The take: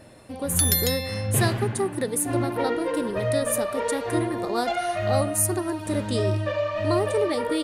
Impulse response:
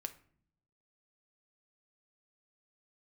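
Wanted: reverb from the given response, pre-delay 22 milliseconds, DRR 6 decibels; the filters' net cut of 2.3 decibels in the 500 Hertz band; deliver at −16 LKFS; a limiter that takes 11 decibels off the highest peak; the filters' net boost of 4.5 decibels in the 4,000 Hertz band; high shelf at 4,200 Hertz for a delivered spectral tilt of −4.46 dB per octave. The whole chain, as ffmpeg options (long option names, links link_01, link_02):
-filter_complex "[0:a]equalizer=frequency=500:width_type=o:gain=-3,equalizer=frequency=4000:width_type=o:gain=8.5,highshelf=frequency=4200:gain=-6,alimiter=limit=-17dB:level=0:latency=1,asplit=2[link_01][link_02];[1:a]atrim=start_sample=2205,adelay=22[link_03];[link_02][link_03]afir=irnorm=-1:irlink=0,volume=-3.5dB[link_04];[link_01][link_04]amix=inputs=2:normalize=0,volume=10.5dB"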